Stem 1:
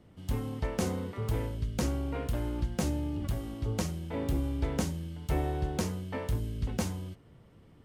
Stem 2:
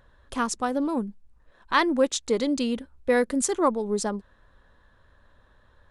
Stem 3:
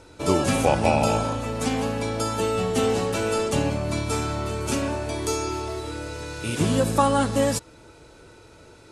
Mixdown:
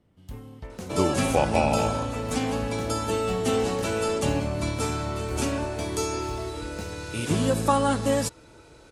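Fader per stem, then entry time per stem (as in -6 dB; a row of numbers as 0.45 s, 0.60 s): -7.5 dB, mute, -2.0 dB; 0.00 s, mute, 0.70 s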